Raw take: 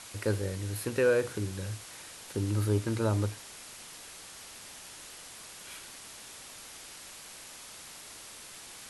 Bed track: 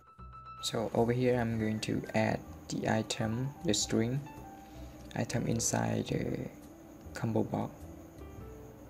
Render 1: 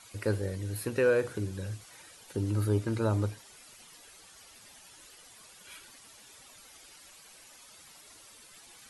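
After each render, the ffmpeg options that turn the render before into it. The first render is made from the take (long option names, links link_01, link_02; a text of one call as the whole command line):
ffmpeg -i in.wav -af "afftdn=noise_reduction=11:noise_floor=-48" out.wav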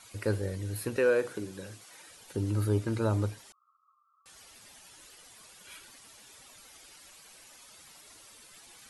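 ffmpeg -i in.wav -filter_complex "[0:a]asettb=1/sr,asplit=3[link_01][link_02][link_03];[link_01]atrim=end=0.964[link_04];[link_02]atrim=start=0.96:end=2.09,asetpts=PTS-STARTPTS,afade=type=in:duration=0.004:curve=qsin,afade=type=out:start_time=1.126:duration=0.004:curve=qsin,highpass=200[link_05];[link_03]atrim=start=2.086[link_06];[link_04][link_05]acrossfade=duration=0.004:curve1=hsin:curve2=qsin[link_07];[link_07][link_06]acrossfade=duration=0.004:curve1=qsin:curve2=hsin,asettb=1/sr,asplit=3[link_08][link_09][link_10];[link_08]atrim=end=3.524[link_11];[link_09]atrim=start=3.52:end=4.26,asetpts=PTS-STARTPTS,afade=type=in:duration=0.004:curve=qsin,afade=type=out:start_time=0.736:duration=0.004:curve=qsin,asuperpass=centerf=1200:order=20:qfactor=4.2[link_12];[link_10]atrim=start=4.256[link_13];[link_11][link_12]acrossfade=duration=0.004:curve1=hsin:curve2=qsin[link_14];[link_14][link_13]acrossfade=duration=0.004:curve1=qsin:curve2=hsin" out.wav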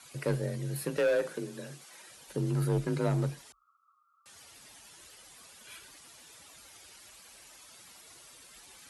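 ffmpeg -i in.wav -af "volume=23dB,asoftclip=hard,volume=-23dB,afreqshift=34" out.wav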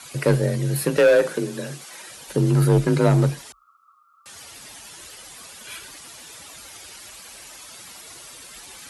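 ffmpeg -i in.wav -af "volume=12dB" out.wav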